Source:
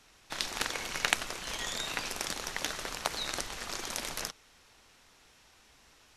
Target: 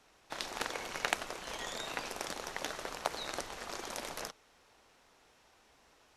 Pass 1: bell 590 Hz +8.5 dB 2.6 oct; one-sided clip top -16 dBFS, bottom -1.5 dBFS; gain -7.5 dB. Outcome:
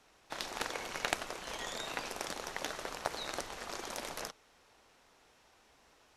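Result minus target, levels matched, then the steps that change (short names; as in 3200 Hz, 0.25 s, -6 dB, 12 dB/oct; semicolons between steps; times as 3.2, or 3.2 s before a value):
one-sided clip: distortion +6 dB
change: one-sided clip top -5 dBFS, bottom -1.5 dBFS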